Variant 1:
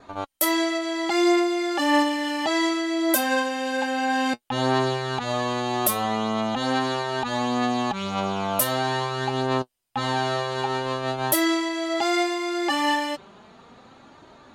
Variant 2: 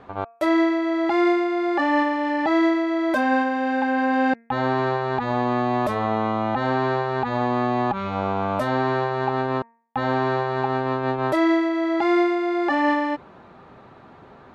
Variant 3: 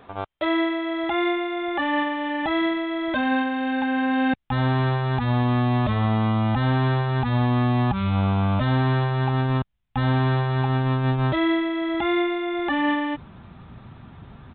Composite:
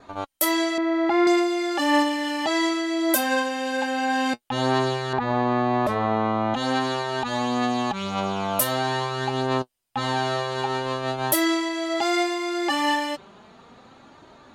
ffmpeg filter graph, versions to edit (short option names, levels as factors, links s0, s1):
-filter_complex "[1:a]asplit=2[s0][s1];[0:a]asplit=3[s2][s3][s4];[s2]atrim=end=0.782[s5];[s0]atrim=start=0.778:end=1.272[s6];[s3]atrim=start=1.268:end=5.132[s7];[s1]atrim=start=5.128:end=6.542[s8];[s4]atrim=start=6.538[s9];[s5][s6]acrossfade=d=0.004:c1=hsin:c2=hsin[s10];[s10][s7]acrossfade=d=0.004:c1=hsin:c2=hsin[s11];[s11][s8]acrossfade=d=0.004:c1=hsin:c2=hsin[s12];[s12][s9]acrossfade=d=0.004:c1=hsin:c2=hsin"